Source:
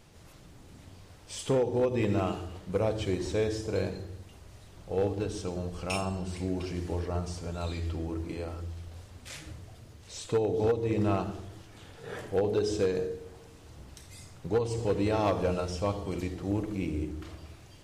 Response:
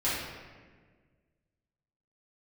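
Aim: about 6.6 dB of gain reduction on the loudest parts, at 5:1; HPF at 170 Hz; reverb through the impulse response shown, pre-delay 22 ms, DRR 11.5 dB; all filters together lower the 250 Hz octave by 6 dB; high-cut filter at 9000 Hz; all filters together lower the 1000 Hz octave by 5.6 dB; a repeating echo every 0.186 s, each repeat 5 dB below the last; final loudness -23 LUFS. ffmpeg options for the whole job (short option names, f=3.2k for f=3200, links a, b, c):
-filter_complex "[0:a]highpass=170,lowpass=9k,equalizer=f=250:t=o:g=-7,equalizer=f=1k:t=o:g=-7.5,acompressor=threshold=-33dB:ratio=5,aecho=1:1:186|372|558|744|930|1116|1302:0.562|0.315|0.176|0.0988|0.0553|0.031|0.0173,asplit=2[a][b];[1:a]atrim=start_sample=2205,adelay=22[c];[b][c]afir=irnorm=-1:irlink=0,volume=-21.5dB[d];[a][d]amix=inputs=2:normalize=0,volume=15.5dB"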